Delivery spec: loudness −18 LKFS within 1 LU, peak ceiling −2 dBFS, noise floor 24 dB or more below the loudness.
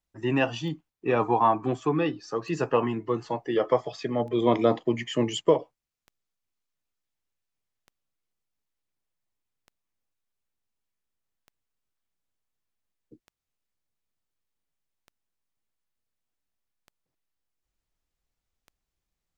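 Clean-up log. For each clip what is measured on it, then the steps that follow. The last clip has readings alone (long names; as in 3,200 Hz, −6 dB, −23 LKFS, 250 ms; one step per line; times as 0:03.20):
number of clicks 11; integrated loudness −26.5 LKFS; sample peak −8.0 dBFS; target loudness −18.0 LKFS
→ click removal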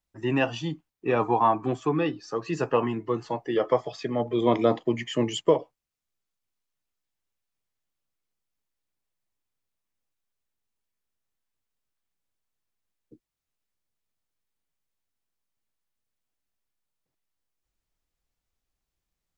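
number of clicks 0; integrated loudness −26.5 LKFS; sample peak −8.0 dBFS; target loudness −18.0 LKFS
→ level +8.5 dB
brickwall limiter −2 dBFS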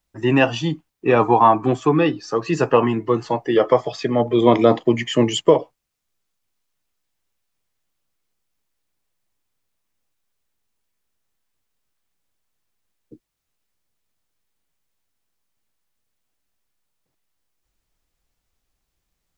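integrated loudness −18.5 LKFS; sample peak −2.0 dBFS; background noise floor −77 dBFS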